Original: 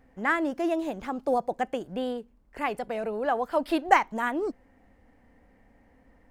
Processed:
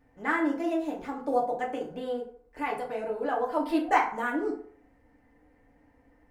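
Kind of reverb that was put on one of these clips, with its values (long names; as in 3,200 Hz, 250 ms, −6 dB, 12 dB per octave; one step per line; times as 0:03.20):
feedback delay network reverb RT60 0.54 s, low-frequency decay 0.8×, high-frequency decay 0.55×, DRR −3.5 dB
level −7.5 dB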